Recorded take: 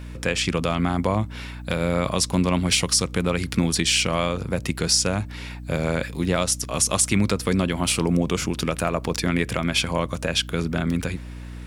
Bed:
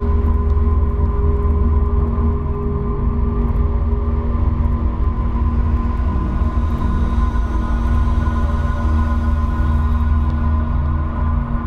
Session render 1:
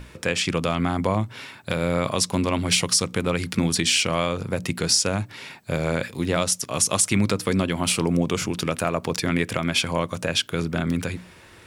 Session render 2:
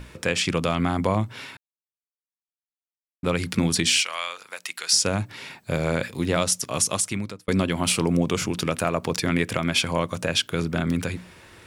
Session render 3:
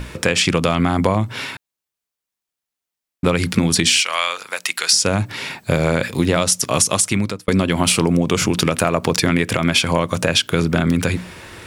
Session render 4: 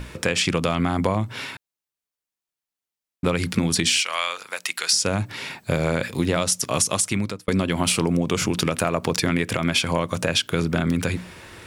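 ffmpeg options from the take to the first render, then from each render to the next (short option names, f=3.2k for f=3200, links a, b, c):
-af "bandreject=f=60:t=h:w=6,bandreject=f=120:t=h:w=6,bandreject=f=180:t=h:w=6,bandreject=f=240:t=h:w=6,bandreject=f=300:t=h:w=6"
-filter_complex "[0:a]asettb=1/sr,asplit=3[a][b][c];[a]atrim=end=4.014[d];[b]atrim=start=4.01:end=4.93,asetpts=PTS-STARTPTS,afade=t=in:d=0.004:c=qsin,afade=t=out:st=0.916:d=0.004:c=qsin,highpass=1.3k[e];[c]atrim=start=4.926[f];[d][e]acrossfade=d=0.004:c1=hsin:c2=qsin[g];[g][f]acrossfade=d=0.004:c1=qsin:c2=hsin,asplit=4[h][i][j][k];[h]atrim=end=1.57,asetpts=PTS-STARTPTS,afade=t=out:st=1.566:d=0.004:c=hsin[l];[i]atrim=start=1.57:end=3.23,asetpts=PTS-STARTPTS,volume=0[m];[j]atrim=start=3.23:end=7.48,asetpts=PTS-STARTPTS,afade=t=in:d=0.004:c=hsin,afade=t=out:st=3.48:d=0.77[n];[k]atrim=start=7.48,asetpts=PTS-STARTPTS,afade=t=in:d=0.004:c=hsin[o];[l][m][n][o]concat=n=4:v=0:a=1"
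-af "acompressor=threshold=-23dB:ratio=6,alimiter=level_in=11dB:limit=-1dB:release=50:level=0:latency=1"
-af "volume=-5dB"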